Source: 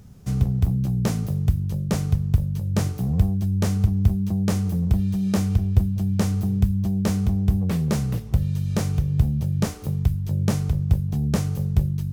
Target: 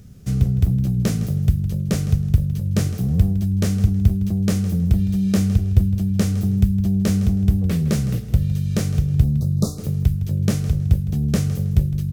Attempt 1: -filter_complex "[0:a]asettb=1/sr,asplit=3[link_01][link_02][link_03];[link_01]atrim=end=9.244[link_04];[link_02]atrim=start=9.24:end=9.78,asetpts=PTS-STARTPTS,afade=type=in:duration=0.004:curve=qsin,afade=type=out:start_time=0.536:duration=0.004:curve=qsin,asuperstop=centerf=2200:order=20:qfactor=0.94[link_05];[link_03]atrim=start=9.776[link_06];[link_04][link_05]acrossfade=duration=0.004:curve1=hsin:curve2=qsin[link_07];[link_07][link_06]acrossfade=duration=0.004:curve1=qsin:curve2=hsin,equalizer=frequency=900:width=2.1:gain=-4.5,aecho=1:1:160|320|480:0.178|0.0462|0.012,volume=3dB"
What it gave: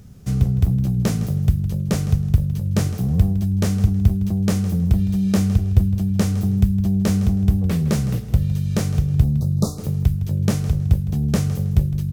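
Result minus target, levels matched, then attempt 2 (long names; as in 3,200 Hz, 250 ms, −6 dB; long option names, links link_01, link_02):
1,000 Hz band +4.0 dB
-filter_complex "[0:a]asettb=1/sr,asplit=3[link_01][link_02][link_03];[link_01]atrim=end=9.244[link_04];[link_02]atrim=start=9.24:end=9.78,asetpts=PTS-STARTPTS,afade=type=in:duration=0.004:curve=qsin,afade=type=out:start_time=0.536:duration=0.004:curve=qsin,asuperstop=centerf=2200:order=20:qfactor=0.94[link_05];[link_03]atrim=start=9.776[link_06];[link_04][link_05]acrossfade=duration=0.004:curve1=hsin:curve2=qsin[link_07];[link_07][link_06]acrossfade=duration=0.004:curve1=qsin:curve2=hsin,equalizer=frequency=900:width=2.1:gain=-11.5,aecho=1:1:160|320|480:0.178|0.0462|0.012,volume=3dB"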